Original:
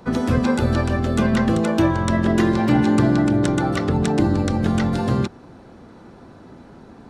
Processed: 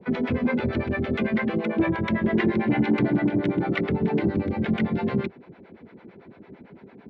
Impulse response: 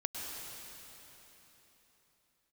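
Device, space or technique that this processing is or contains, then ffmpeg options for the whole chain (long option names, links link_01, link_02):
guitar amplifier with harmonic tremolo: -filter_complex "[0:a]asettb=1/sr,asplit=3[link_01][link_02][link_03];[link_01]atrim=end=1.164[link_04];[link_02]atrim=start=1.16:end=1.76,asetpts=PTS-STARTPTS,afade=type=in:duration=0.004:curve=qsin,afade=type=out:start_time=0.596:duration=0.004:curve=qsin,lowshelf=frequency=170:gain=-8.5[link_05];[link_03]atrim=start=1.756[link_06];[link_04][link_05]acrossfade=duration=0.004:curve1=hsin:curve2=qsin[link_07];[link_07][link_06]acrossfade=duration=0.004:curve1=qsin:curve2=hsin,acrossover=split=510[link_08][link_09];[link_08]aeval=exprs='val(0)*(1-1/2+1/2*cos(2*PI*8.9*n/s))':channel_layout=same[link_10];[link_09]aeval=exprs='val(0)*(1-1/2-1/2*cos(2*PI*8.9*n/s))':channel_layout=same[link_11];[link_10][link_11]amix=inputs=2:normalize=0,asoftclip=type=tanh:threshold=-14dB,highpass=95,equalizer=frequency=110:width_type=q:width=4:gain=-4,equalizer=frequency=190:width_type=q:width=4:gain=4,equalizer=frequency=400:width_type=q:width=4:gain=6,equalizer=frequency=770:width_type=q:width=4:gain=-3,equalizer=frequency=1200:width_type=q:width=4:gain=-6,equalizer=frequency=2200:width_type=q:width=4:gain=10,lowpass=frequency=3400:width=0.5412,lowpass=frequency=3400:width=1.3066"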